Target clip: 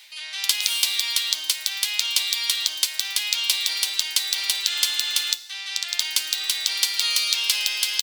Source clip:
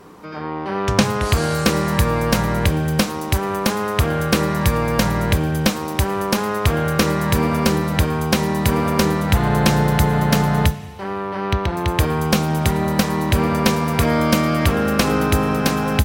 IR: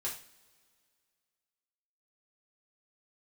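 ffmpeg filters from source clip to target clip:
-filter_complex "[0:a]areverse,acompressor=mode=upward:threshold=-34dB:ratio=2.5,areverse,highpass=f=1.9k:t=q:w=2.3,asplit=2[a][b];[b]adelay=20,volume=-13.5dB[c];[a][c]amix=inputs=2:normalize=0,asetrate=88200,aresample=44100"

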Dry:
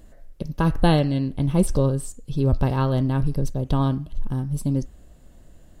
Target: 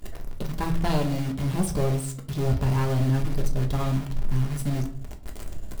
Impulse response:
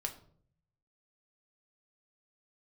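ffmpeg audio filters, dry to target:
-filter_complex "[0:a]asettb=1/sr,asplit=3[a][b][c];[a]atrim=end=0.904[d];[b]atrim=start=0.9:end=2.99,asetpts=PTS-STARTPTS,afade=t=in:d=0.004:c=qsin,afade=t=out:st=2.086:d=0.004:c=qsin,highpass=46[e];[c]atrim=start=2.986[f];[d][e]acrossfade=d=0.004:c1=hsin:c2=qsin[g];[g][f]acrossfade=d=0.004:c1=qsin:c2=hsin,agate=range=-56dB:threshold=-46dB:ratio=16:detection=peak,acompressor=mode=upward:threshold=-24dB:ratio=2.5,asoftclip=type=tanh:threshold=-20dB,acrusher=bits=7:dc=4:mix=0:aa=0.000001[h];[1:a]atrim=start_sample=2205,afade=t=out:st=0.33:d=0.01,atrim=end_sample=14994[i];[h][i]afir=irnorm=-1:irlink=0"

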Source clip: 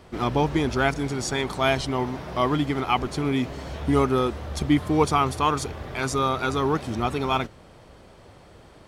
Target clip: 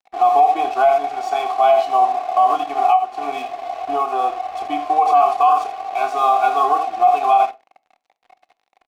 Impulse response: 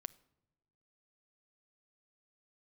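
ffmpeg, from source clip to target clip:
-filter_complex "[0:a]asplit=3[a][b][c];[a]bandpass=f=730:t=q:w=8,volume=0dB[d];[b]bandpass=f=1.09k:t=q:w=8,volume=-6dB[e];[c]bandpass=f=2.44k:t=q:w=8,volume=-9dB[f];[d][e][f]amix=inputs=3:normalize=0,aecho=1:1:2.7:0.98,aecho=1:1:28|79:0.398|0.316,aeval=exprs='sgn(val(0))*max(abs(val(0))-0.00335,0)':c=same,asettb=1/sr,asplit=3[g][h][i];[g]atrim=end=2.904[j];[h]atrim=start=2.9:end=5.06,asetpts=PTS-STARTPTS,afade=t=in:d=0.004:c=qsin,afade=t=out:st=2.156:d=0.004:c=qsin,acompressor=threshold=-31dB:ratio=5[k];[i]atrim=start=5.056[l];[j][k]acrossfade=d=0.004:c1=hsin:c2=qsin[m];[m][l]acrossfade=d=0.004:c1=qsin:c2=hsin,lowshelf=f=300:g=-11.5,asoftclip=type=tanh:threshold=-16dB,equalizer=f=760:w=4:g=10.5[n];[1:a]atrim=start_sample=2205,afade=t=out:st=0.27:d=0.01,atrim=end_sample=12348,asetrate=79380,aresample=44100[o];[n][o]afir=irnorm=-1:irlink=0,alimiter=level_in=27.5dB:limit=-1dB:release=50:level=0:latency=1,volume=-5dB"

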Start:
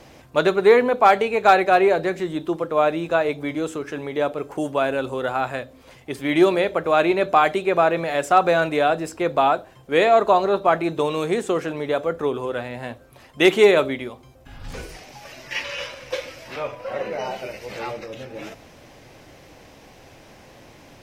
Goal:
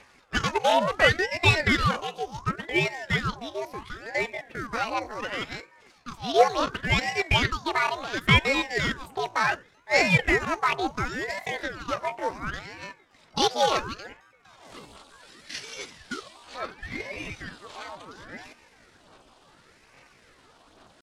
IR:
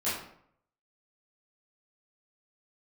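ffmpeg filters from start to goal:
-af "equalizer=f=150:w=4.6:g=-9,bandreject=f=1.1k:w=18,aeval=exprs='0.708*(cos(1*acos(clip(val(0)/0.708,-1,1)))-cos(1*PI/2))+0.0224*(cos(5*acos(clip(val(0)/0.708,-1,1)))-cos(5*PI/2))+0.0398*(cos(7*acos(clip(val(0)/0.708,-1,1)))-cos(7*PI/2))':c=same,acrusher=bits=4:mode=log:mix=0:aa=0.000001,aphaser=in_gain=1:out_gain=1:delay=4.3:decay=0.44:speed=1.2:type=sinusoidal,asetrate=72056,aresample=44100,atempo=0.612027,highpass=110,lowpass=7.9k,aeval=exprs='val(0)*sin(2*PI*750*n/s+750*0.85/0.7*sin(2*PI*0.7*n/s))':c=same,volume=-4dB"

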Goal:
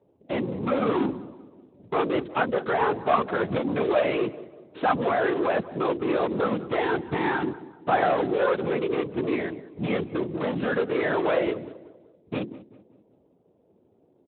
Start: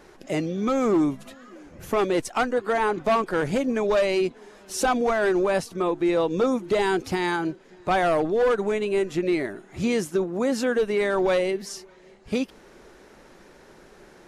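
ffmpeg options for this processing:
-filter_complex "[0:a]lowpass=f=2.3k:p=1,bandreject=f=68.35:t=h:w=4,bandreject=f=136.7:t=h:w=4,bandreject=f=205.05:t=h:w=4,bandreject=f=273.4:t=h:w=4,bandreject=f=341.75:t=h:w=4,agate=range=-11dB:threshold=-41dB:ratio=16:detection=peak,acrossover=split=750[a][b];[a]asoftclip=type=tanh:threshold=-24.5dB[c];[b]acrusher=bits=5:mix=0:aa=0.000001[d];[c][d]amix=inputs=2:normalize=0,afftfilt=real='hypot(re,im)*cos(2*PI*random(0))':imag='hypot(re,im)*sin(2*PI*random(1))':win_size=512:overlap=0.75,asplit=2[e][f];[f]adelay=192,lowpass=f=1.5k:p=1,volume=-16.5dB,asplit=2[g][h];[h]adelay=192,lowpass=f=1.5k:p=1,volume=0.47,asplit=2[i][j];[j]adelay=192,lowpass=f=1.5k:p=1,volume=0.47,asplit=2[k][l];[l]adelay=192,lowpass=f=1.5k:p=1,volume=0.47[m];[g][i][k][m]amix=inputs=4:normalize=0[n];[e][n]amix=inputs=2:normalize=0,volume=7.5dB" -ar 8000 -c:a libspeex -b:a 18k

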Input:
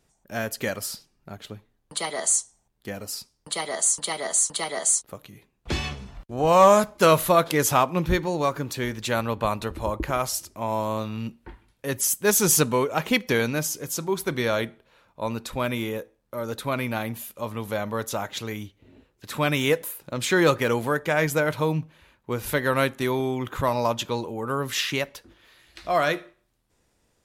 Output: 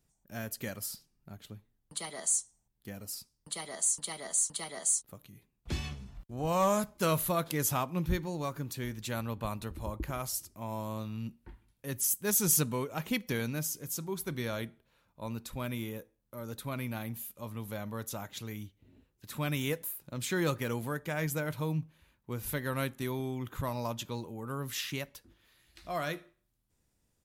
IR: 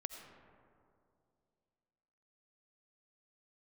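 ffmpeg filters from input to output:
-af "firequalizer=gain_entry='entry(150,0);entry(440,-8);entry(15000,4)':delay=0.05:min_phase=1,volume=-5.5dB"

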